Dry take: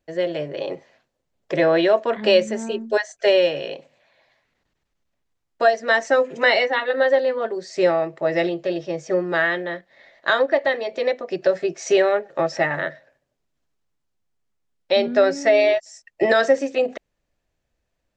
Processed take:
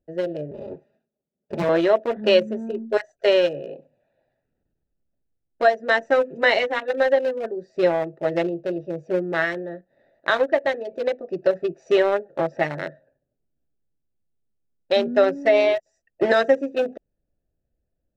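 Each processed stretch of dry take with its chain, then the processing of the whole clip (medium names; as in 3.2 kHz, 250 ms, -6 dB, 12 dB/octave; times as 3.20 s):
0.51–1.69 s: comb filter that takes the minimum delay 4.9 ms + high-pass 130 Hz + peaking EQ 1.2 kHz -4.5 dB 0.74 oct
whole clip: local Wiener filter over 41 samples; dynamic bell 4.6 kHz, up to -6 dB, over -52 dBFS, Q 6.7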